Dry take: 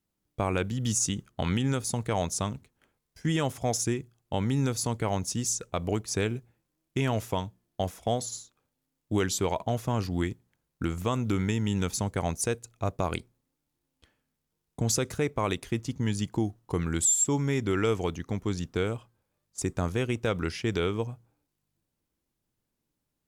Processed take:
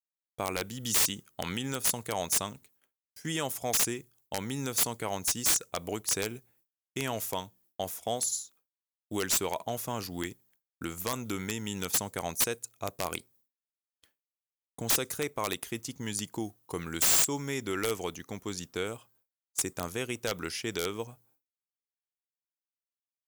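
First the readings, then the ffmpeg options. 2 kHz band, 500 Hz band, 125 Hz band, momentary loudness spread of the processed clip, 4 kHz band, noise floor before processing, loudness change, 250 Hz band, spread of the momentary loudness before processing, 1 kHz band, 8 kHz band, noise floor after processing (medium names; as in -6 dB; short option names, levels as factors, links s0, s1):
0.0 dB, -5.0 dB, -12.0 dB, 13 LU, +3.0 dB, -82 dBFS, -1.5 dB, -7.5 dB, 8 LU, -3.0 dB, +1.0 dB, under -85 dBFS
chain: -af "agate=range=0.0224:threshold=0.00126:ratio=3:detection=peak,aemphasis=mode=production:type=bsi,aeval=exprs='(mod(5.96*val(0)+1,2)-1)/5.96':c=same,volume=0.708"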